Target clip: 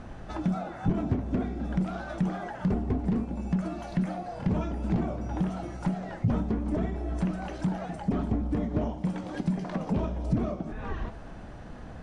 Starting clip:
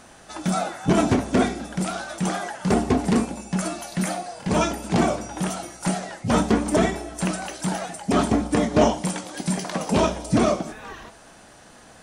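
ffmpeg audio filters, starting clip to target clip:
-af "acompressor=threshold=-33dB:ratio=6,highshelf=f=6.6k:g=-9,volume=27dB,asoftclip=hard,volume=-27dB,aemphasis=mode=reproduction:type=riaa"

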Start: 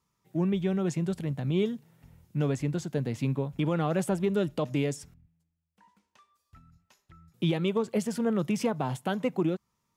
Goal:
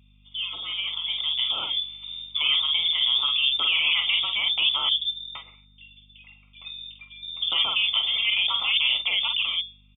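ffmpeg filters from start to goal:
-filter_complex "[0:a]asuperstop=centerf=2000:order=12:qfactor=3.1,asplit=2[a][b];[b]adelay=48,volume=-6dB[c];[a][c]amix=inputs=2:normalize=0,asettb=1/sr,asplit=3[d][e][f];[d]atrim=end=4.894[g];[e]atrim=start=4.89:end=7.52,asetpts=PTS-STARTPTS,afade=t=in:d=0.004:c=qsin,afade=t=out:st=2.626:d=0.004:c=qsin,acrossover=split=200|1000[h][i][j];[h]adelay=120[k];[j]adelay=460[l];[k][i][l]amix=inputs=3:normalize=0,atrim=end_sample=115983[m];[f]atrim=start=7.516[n];[g][m]acrossfade=d=0.004:c1=hsin:c2=qsin[o];[o][n]acrossfade=d=0.004:c1=qsin:c2=hsin,afftfilt=real='re*lt(hypot(re,im),0.141)':imag='im*lt(hypot(re,im),0.141)':win_size=1024:overlap=0.75,highpass=f=83:p=1,bandreject=f=60:t=h:w=6,bandreject=f=120:t=h:w=6,bandreject=f=180:t=h:w=6,bandreject=f=240:t=h:w=6,bandreject=f=300:t=h:w=6,bandreject=f=360:t=h:w=6,alimiter=level_in=6.5dB:limit=-24dB:level=0:latency=1:release=22,volume=-6.5dB,dynaudnorm=f=920:g=3:m=7.5dB,lowpass=f=3.1k:t=q:w=0.5098,lowpass=f=3.1k:t=q:w=0.6013,lowpass=f=3.1k:t=q:w=0.9,lowpass=f=3.1k:t=q:w=2.563,afreqshift=-3700,aeval=exprs='val(0)+0.00158*(sin(2*PI*50*n/s)+sin(2*PI*2*50*n/s)/2+sin(2*PI*3*50*n/s)/3+sin(2*PI*4*50*n/s)/4+sin(2*PI*5*50*n/s)/5)':c=same,crystalizer=i=7:c=0"

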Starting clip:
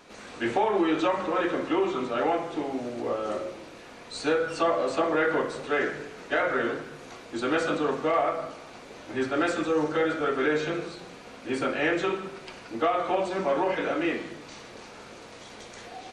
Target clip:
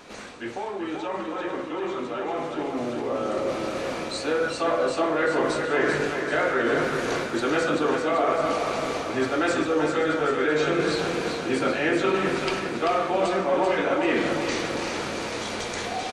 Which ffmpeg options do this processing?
-af "areverse,acompressor=threshold=-36dB:ratio=6,areverse,aecho=1:1:388|776|1164|1552|1940|2328|2716:0.501|0.271|0.146|0.0789|0.0426|0.023|0.0124,dynaudnorm=f=760:g=9:m=8dB,volume=6dB"

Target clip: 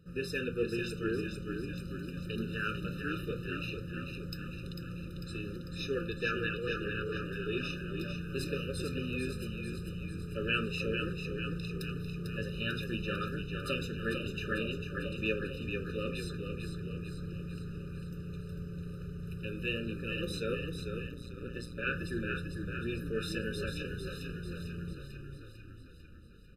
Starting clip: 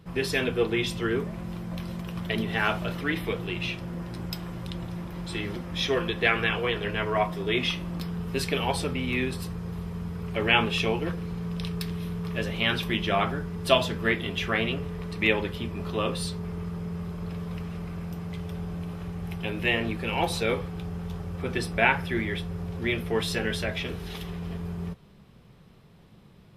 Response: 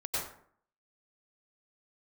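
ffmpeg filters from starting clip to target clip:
-filter_complex "[0:a]asplit=9[a][b][c][d][e][f][g][h][i];[b]adelay=447,afreqshift=-31,volume=-6dB[j];[c]adelay=894,afreqshift=-62,volume=-10.3dB[k];[d]adelay=1341,afreqshift=-93,volume=-14.6dB[l];[e]adelay=1788,afreqshift=-124,volume=-18.9dB[m];[f]adelay=2235,afreqshift=-155,volume=-23.2dB[n];[g]adelay=2682,afreqshift=-186,volume=-27.5dB[o];[h]adelay=3129,afreqshift=-217,volume=-31.8dB[p];[i]adelay=3576,afreqshift=-248,volume=-36.1dB[q];[a][j][k][l][m][n][o][p][q]amix=inputs=9:normalize=0,asettb=1/sr,asplit=3[r][s][t];[r]atrim=end=21.074[u];[s]atrim=start=21.07:end=21.87,asetpts=PTS-STARTPTS,afade=t=in:d=0.004:c=qsin,afade=t=out:st=0.796:d=0.004:c=qsin,tremolo=f=120:d=0.889[v];[t]atrim=start=21.866[w];[u][v]acrossfade=d=0.004:c1=hsin:c2=qsin[x];[x][w]acrossfade=d=0.004:c1=qsin:c2=hsin,afftfilt=real='re*eq(mod(floor(b*sr/1024/600),2),0)':imag='im*eq(mod(floor(b*sr/1024/600),2),0)':win_size=1024:overlap=0.75,volume=-8dB"

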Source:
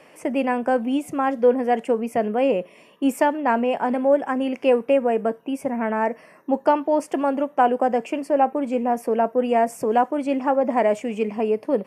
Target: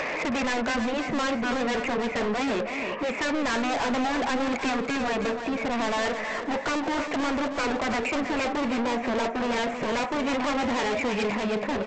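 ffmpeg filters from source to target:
-filter_complex "[0:a]asplit=2[a][b];[b]highpass=f=720:p=1,volume=14dB,asoftclip=type=tanh:threshold=-5.5dB[c];[a][c]amix=inputs=2:normalize=0,lowpass=f=1.5k:p=1,volume=-6dB,afftfilt=real='re*lt(hypot(re,im),1)':imag='im*lt(hypot(re,im),1)':win_size=1024:overlap=0.75,acompressor=mode=upward:threshold=-27dB:ratio=2.5,highshelf=f=3.1k:t=q:w=3:g=-10.5,aresample=16000,asoftclip=type=tanh:threshold=-33.5dB,aresample=44100,aecho=1:1:321|642|963|1284:0.398|0.119|0.0358|0.0107,volume=8dB"

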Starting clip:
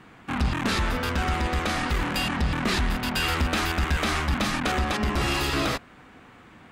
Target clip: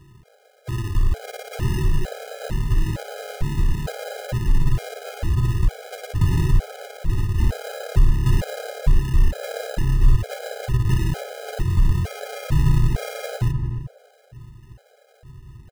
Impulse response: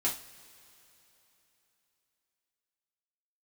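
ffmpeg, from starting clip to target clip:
-filter_complex "[0:a]superequalizer=6b=2.51:8b=0.316,asetrate=18846,aresample=44100,acrusher=samples=39:mix=1:aa=0.000001,asplit=2[a][b];[b]adelay=304,lowpass=f=940:p=1,volume=-7dB,asplit=2[c][d];[d]adelay=304,lowpass=f=940:p=1,volume=0.32,asplit=2[e][f];[f]adelay=304,lowpass=f=940:p=1,volume=0.32,asplit=2[g][h];[h]adelay=304,lowpass=f=940:p=1,volume=0.32[i];[c][e][g][i]amix=inputs=4:normalize=0[j];[a][j]amix=inputs=2:normalize=0,asubboost=boost=3:cutoff=130,afftfilt=real='re*gt(sin(2*PI*1.1*pts/sr)*(1-2*mod(floor(b*sr/1024/420),2)),0)':imag='im*gt(sin(2*PI*1.1*pts/sr)*(1-2*mod(floor(b*sr/1024/420),2)),0)':win_size=1024:overlap=0.75"

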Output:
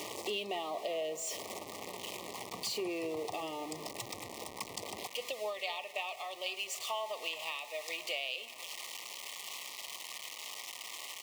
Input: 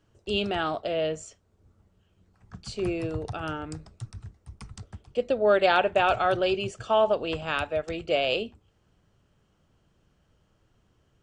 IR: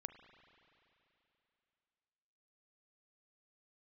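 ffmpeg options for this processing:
-filter_complex "[0:a]aeval=exprs='val(0)+0.5*0.0188*sgn(val(0))':c=same,asetnsamples=n=441:p=0,asendcmd='5.07 highpass f 1300',highpass=420,acompressor=threshold=-38dB:ratio=6,asuperstop=centerf=1500:order=12:qfactor=2.3,asplit=2[a][b];[b]adelay=259,lowpass=f=2k:p=1,volume=-15.5dB,asplit=2[c][d];[d]adelay=259,lowpass=f=2k:p=1,volume=0.54,asplit=2[e][f];[f]adelay=259,lowpass=f=2k:p=1,volume=0.54,asplit=2[g][h];[h]adelay=259,lowpass=f=2k:p=1,volume=0.54,asplit=2[i][j];[j]adelay=259,lowpass=f=2k:p=1,volume=0.54[k];[a][c][e][g][i][k]amix=inputs=6:normalize=0,volume=3.5dB"

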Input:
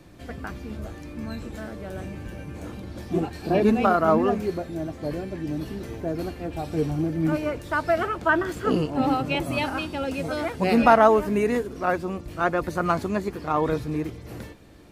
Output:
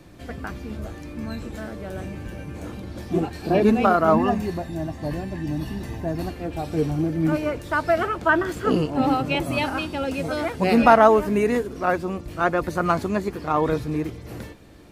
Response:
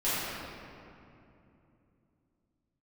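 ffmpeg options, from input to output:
-filter_complex "[0:a]asettb=1/sr,asplit=3[a][b][c];[a]atrim=end=4.134[d];[b]atrim=start=4.13:end=6.3,asetpts=PTS-STARTPTS,afade=t=in:d=0.004:c=qsin,afade=t=out:st=2.166:d=0.004:c=qsin,aecho=1:1:1.1:0.53,atrim=end_sample=95697[e];[c]atrim=start=6.296[f];[d][e]acrossfade=d=0.004:c1=hsin:c2=qsin[g];[g][f]acrossfade=d=0.004:c1=qsin:c2=hsin,volume=2dB"

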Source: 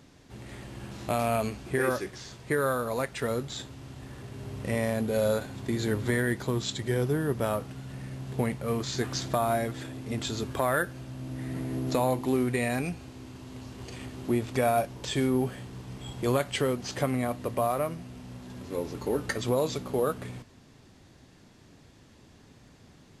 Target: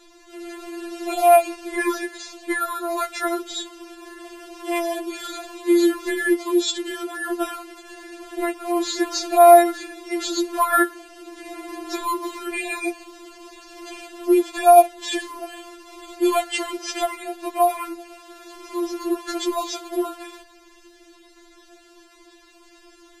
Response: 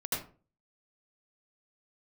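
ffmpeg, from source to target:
-af "apsyclip=17dB,afftfilt=real='re*4*eq(mod(b,16),0)':imag='im*4*eq(mod(b,16),0)':win_size=2048:overlap=0.75,volume=-7dB"

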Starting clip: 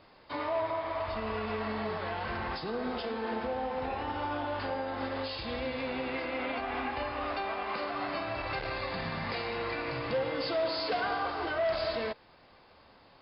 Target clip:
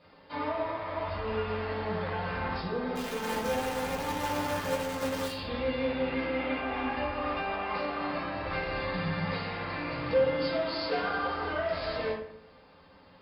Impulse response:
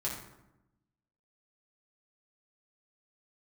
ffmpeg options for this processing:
-filter_complex "[0:a]asplit=3[a][b][c];[a]afade=t=out:st=2.95:d=0.02[d];[b]acrusher=bits=6:dc=4:mix=0:aa=0.000001,afade=t=in:st=2.95:d=0.02,afade=t=out:st=5.3:d=0.02[e];[c]afade=t=in:st=5.3:d=0.02[f];[d][e][f]amix=inputs=3:normalize=0[g];[1:a]atrim=start_sample=2205,asetrate=61740,aresample=44100[h];[g][h]afir=irnorm=-1:irlink=0"

